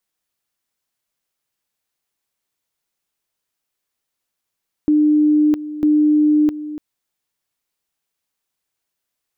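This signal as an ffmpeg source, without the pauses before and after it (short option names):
-f lavfi -i "aevalsrc='pow(10,(-10.5-14.5*gte(mod(t,0.95),0.66))/20)*sin(2*PI*301*t)':d=1.9:s=44100"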